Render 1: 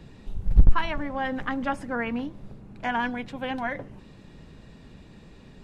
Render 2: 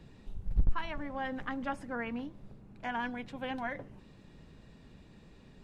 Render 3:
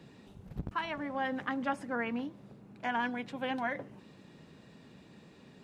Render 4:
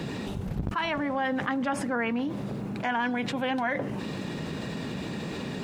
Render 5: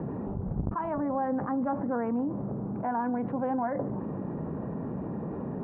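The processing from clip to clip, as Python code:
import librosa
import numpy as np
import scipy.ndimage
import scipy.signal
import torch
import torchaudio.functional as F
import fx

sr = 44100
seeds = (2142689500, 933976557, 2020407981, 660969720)

y1 = fx.rider(x, sr, range_db=3, speed_s=0.5)
y1 = y1 * librosa.db_to_amplitude(-9.0)
y2 = scipy.signal.sosfilt(scipy.signal.butter(2, 150.0, 'highpass', fs=sr, output='sos'), y1)
y2 = y2 * librosa.db_to_amplitude(3.0)
y3 = fx.env_flatten(y2, sr, amount_pct=70)
y3 = y3 * librosa.db_to_amplitude(2.5)
y4 = scipy.signal.sosfilt(scipy.signal.butter(4, 1100.0, 'lowpass', fs=sr, output='sos'), y3)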